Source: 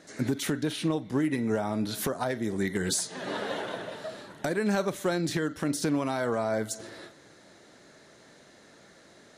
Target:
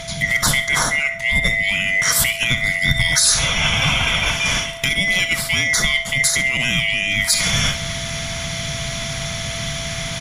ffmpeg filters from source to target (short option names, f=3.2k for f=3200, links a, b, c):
-filter_complex "[0:a]afftfilt=real='real(if(lt(b,920),b+92*(1-2*mod(floor(b/92),2)),b),0)':imag='imag(if(lt(b,920),b+92*(1-2*mod(floor(b/92),2)),b),0)':win_size=2048:overlap=0.75,bandreject=f=900:w=15,areverse,acompressor=threshold=-42dB:ratio=6,areverse,equalizer=f=160:t=o:w=0.67:g=8,equalizer=f=400:t=o:w=0.67:g=-11,equalizer=f=2.5k:t=o:w=0.67:g=-11,asetrate=40517,aresample=44100,asplit=2[a][b];[b]aecho=0:1:67|134|201:0.2|0.0698|0.0244[c];[a][c]amix=inputs=2:normalize=0,aeval=exprs='val(0)+0.000501*sin(2*PI*670*n/s)':c=same,lowshelf=f=150:g=8,alimiter=level_in=36dB:limit=-1dB:release=50:level=0:latency=1,volume=-3.5dB"